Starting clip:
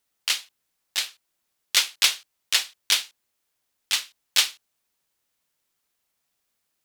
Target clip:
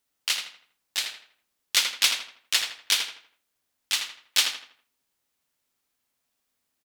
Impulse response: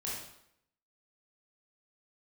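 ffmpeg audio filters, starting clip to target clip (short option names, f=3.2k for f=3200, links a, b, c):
-filter_complex "[0:a]equalizer=f=260:t=o:w=0.24:g=6,asplit=2[a][b];[b]adelay=81,lowpass=f=3.4k:p=1,volume=-5dB,asplit=2[c][d];[d]adelay=81,lowpass=f=3.4k:p=1,volume=0.39,asplit=2[e][f];[f]adelay=81,lowpass=f=3.4k:p=1,volume=0.39,asplit=2[g][h];[h]adelay=81,lowpass=f=3.4k:p=1,volume=0.39,asplit=2[i][j];[j]adelay=81,lowpass=f=3.4k:p=1,volume=0.39[k];[a][c][e][g][i][k]amix=inputs=6:normalize=0,volume=-2dB"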